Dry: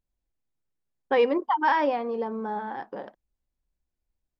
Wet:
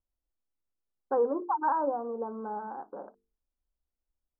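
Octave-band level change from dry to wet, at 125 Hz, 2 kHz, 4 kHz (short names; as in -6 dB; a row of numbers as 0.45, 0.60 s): n/a, -14.0 dB, under -40 dB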